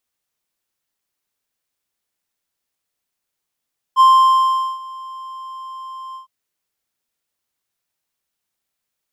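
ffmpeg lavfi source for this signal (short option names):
-f lavfi -i "aevalsrc='0.631*(1-4*abs(mod(1050*t+0.25,1)-0.5))':d=2.309:s=44100,afade=t=in:d=0.043,afade=t=out:st=0.043:d=0.78:silence=0.0668,afade=t=out:st=2.19:d=0.119"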